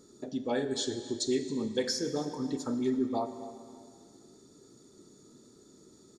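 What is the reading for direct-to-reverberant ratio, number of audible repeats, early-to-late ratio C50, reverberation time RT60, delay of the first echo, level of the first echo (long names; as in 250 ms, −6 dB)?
8.5 dB, 2, 9.5 dB, 2.0 s, 270 ms, −18.0 dB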